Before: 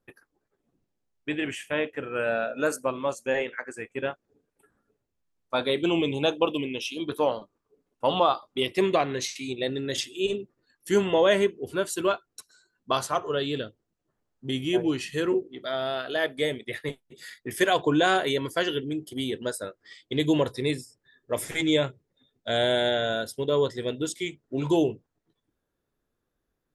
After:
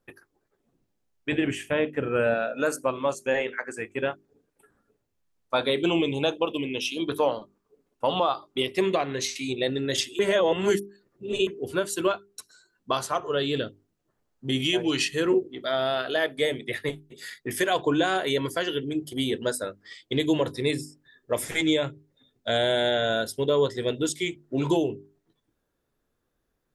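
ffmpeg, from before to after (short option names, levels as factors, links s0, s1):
-filter_complex "[0:a]asettb=1/sr,asplit=3[s0][s1][s2];[s0]atrim=end=1.324[s3];[s1]atrim=start=1.32:end=2.34,asetpts=PTS-STARTPTS,afade=t=in:d=0.004:c=qsin,afade=t=out:st=1.016:d=0.004:c=qsin,lowshelf=f=460:g=9.5[s4];[s2]atrim=start=2.336[s5];[s3][s4]acrossfade=d=0.004:c1=hsin:c2=qsin[s6];[s6][s5]acrossfade=d=0.004:c1=qsin:c2=hsin,asplit=3[s7][s8][s9];[s7]afade=t=out:st=14.59:d=0.02[s10];[s8]equalizer=f=4400:w=0.37:g=10.5,afade=t=in:st=14.59:d=0.02,afade=t=out:st=15.07:d=0.02[s11];[s9]afade=t=in:st=15.07:d=0.02[s12];[s10][s11][s12]amix=inputs=3:normalize=0,asplit=3[s13][s14][s15];[s13]atrim=end=10.192[s16];[s14]atrim=start=10.188:end=11.472,asetpts=PTS-STARTPTS,areverse[s17];[s15]atrim=start=11.468[s18];[s16][s17]acrossfade=d=0.004:c1=hsin:c2=hsin[s19];[s19][s18]acrossfade=d=0.004:c1=hsin:c2=hsin,bandreject=f=50:t=h:w=6,bandreject=f=100:t=h:w=6,bandreject=f=150:t=h:w=6,bandreject=f=200:t=h:w=6,bandreject=f=250:t=h:w=6,bandreject=f=300:t=h:w=6,bandreject=f=350:t=h:w=6,bandreject=f=400:t=h:w=6,alimiter=limit=0.15:level=0:latency=1:release=398,volume=1.5"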